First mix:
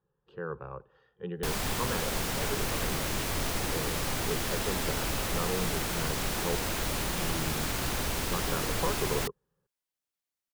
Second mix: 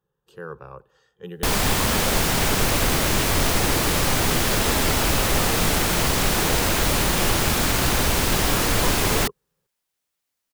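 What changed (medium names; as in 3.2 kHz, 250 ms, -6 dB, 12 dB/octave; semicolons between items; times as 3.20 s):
speech: remove distance through air 340 m; background +11.0 dB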